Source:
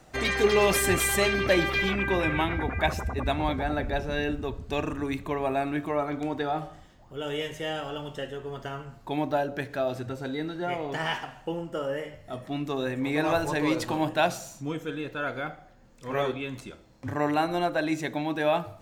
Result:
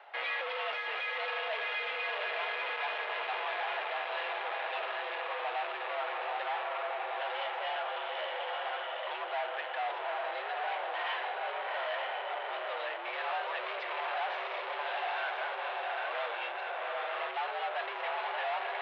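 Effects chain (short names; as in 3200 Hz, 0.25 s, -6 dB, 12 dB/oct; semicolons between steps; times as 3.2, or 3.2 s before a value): diffused feedback echo 0.831 s, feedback 55%, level -3 dB; tube stage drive 37 dB, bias 0.5; mistuned SSB +82 Hz 510–3300 Hz; gain +6 dB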